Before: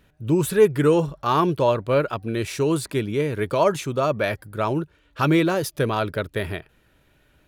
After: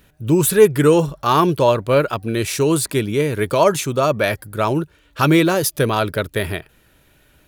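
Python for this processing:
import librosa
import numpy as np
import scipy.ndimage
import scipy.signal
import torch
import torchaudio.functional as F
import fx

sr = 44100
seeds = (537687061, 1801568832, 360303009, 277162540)

y = fx.high_shelf(x, sr, hz=5700.0, db=9.5)
y = y * librosa.db_to_amplitude(4.5)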